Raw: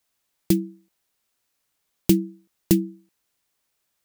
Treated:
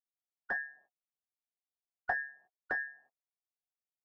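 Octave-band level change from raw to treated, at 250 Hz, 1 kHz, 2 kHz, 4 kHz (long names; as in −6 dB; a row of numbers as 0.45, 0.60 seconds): −39.0 dB, can't be measured, +12.5 dB, below −30 dB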